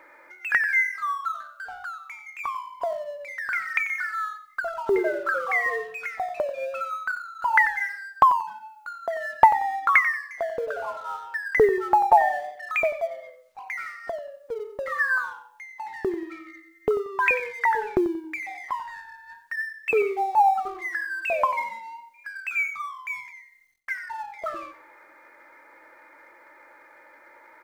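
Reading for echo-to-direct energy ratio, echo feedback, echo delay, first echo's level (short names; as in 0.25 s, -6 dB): -13.0 dB, 25%, 91 ms, -13.5 dB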